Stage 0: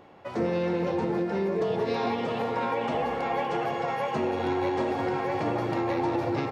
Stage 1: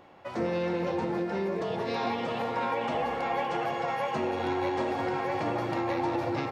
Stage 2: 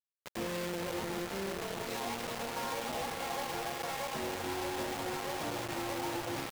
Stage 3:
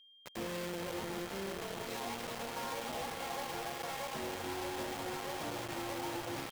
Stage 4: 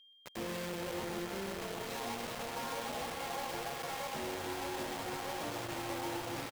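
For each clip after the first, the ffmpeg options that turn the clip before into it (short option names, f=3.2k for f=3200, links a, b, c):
-af "equalizer=f=160:w=0.34:g=-3.5,bandreject=f=430:w=13"
-af "acrusher=bits=4:mix=0:aa=0.000001,volume=-8.5dB"
-af "aeval=exprs='val(0)+0.00158*sin(2*PI*3200*n/s)':c=same,volume=-3dB"
-af "aecho=1:1:127:0.398"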